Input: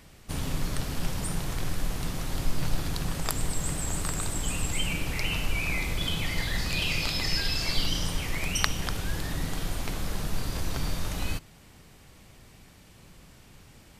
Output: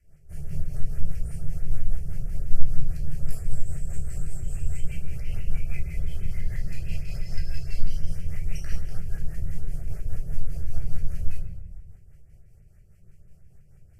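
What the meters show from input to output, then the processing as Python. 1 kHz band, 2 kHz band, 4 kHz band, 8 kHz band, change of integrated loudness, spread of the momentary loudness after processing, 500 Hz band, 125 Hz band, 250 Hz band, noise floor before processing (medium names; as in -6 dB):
-20.0 dB, -16.5 dB, -22.0 dB, -15.5 dB, -4.5 dB, 3 LU, -10.5 dB, +1.0 dB, -7.0 dB, -53 dBFS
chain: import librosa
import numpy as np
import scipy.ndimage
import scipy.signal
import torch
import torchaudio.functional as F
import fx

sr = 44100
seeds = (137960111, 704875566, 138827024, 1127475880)

y = fx.low_shelf(x, sr, hz=240.0, db=11.0)
y = fx.room_shoebox(y, sr, seeds[0], volume_m3=480.0, walls='mixed', distance_m=3.0)
y = fx.rotary(y, sr, hz=5.0)
y = fx.dynamic_eq(y, sr, hz=3900.0, q=0.73, threshold_db=-36.0, ratio=4.0, max_db=3)
y = fx.fixed_phaser(y, sr, hz=1000.0, stages=6)
y = fx.filter_lfo_notch(y, sr, shape='saw_up', hz=6.1, low_hz=720.0, high_hz=4500.0, q=0.73)
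y = y * librosa.db_to_amplitude(-16.5)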